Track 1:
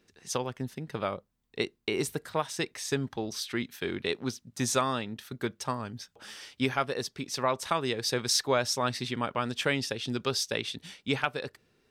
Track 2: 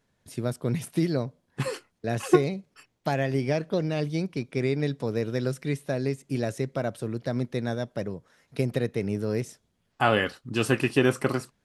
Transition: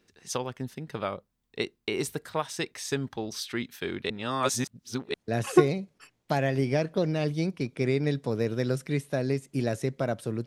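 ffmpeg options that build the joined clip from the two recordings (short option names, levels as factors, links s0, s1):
-filter_complex "[0:a]apad=whole_dur=10.46,atrim=end=10.46,asplit=2[s0][s1];[s0]atrim=end=4.102[s2];[s1]atrim=start=4.098:end=5.142,asetpts=PTS-STARTPTS,areverse[s3];[1:a]atrim=start=1.898:end=7.22[s4];[s2][s3]acrossfade=d=0.004:c1=hsin:c2=hsin[s5];[s5][s4]acrossfade=d=0.004:c1=hsin:c2=hsin"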